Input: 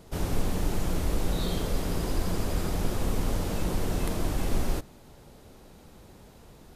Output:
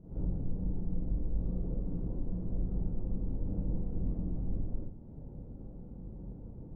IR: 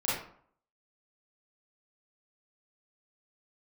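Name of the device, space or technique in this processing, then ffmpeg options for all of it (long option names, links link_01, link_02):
television next door: -filter_complex "[0:a]acompressor=threshold=-38dB:ratio=5,lowpass=260[link_01];[1:a]atrim=start_sample=2205[link_02];[link_01][link_02]afir=irnorm=-1:irlink=0"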